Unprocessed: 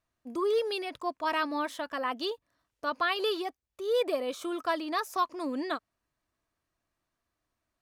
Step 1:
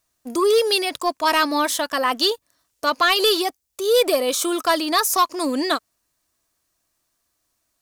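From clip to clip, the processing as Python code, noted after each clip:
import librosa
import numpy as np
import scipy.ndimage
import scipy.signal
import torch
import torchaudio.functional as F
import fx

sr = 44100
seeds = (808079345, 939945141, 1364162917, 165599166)

y = fx.bass_treble(x, sr, bass_db=-3, treble_db=14)
y = fx.leveller(y, sr, passes=1)
y = F.gain(torch.from_numpy(y), 7.5).numpy()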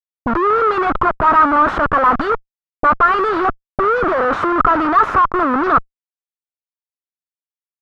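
y = fx.schmitt(x, sr, flips_db=-31.0)
y = fx.envelope_lowpass(y, sr, base_hz=220.0, top_hz=1300.0, q=5.0, full_db=-23.5, direction='up')
y = F.gain(torch.from_numpy(y), 4.0).numpy()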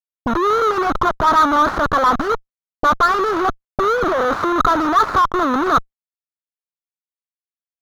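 y = scipy.ndimage.median_filter(x, 15, mode='constant')
y = F.gain(torch.from_numpy(y), -1.0).numpy()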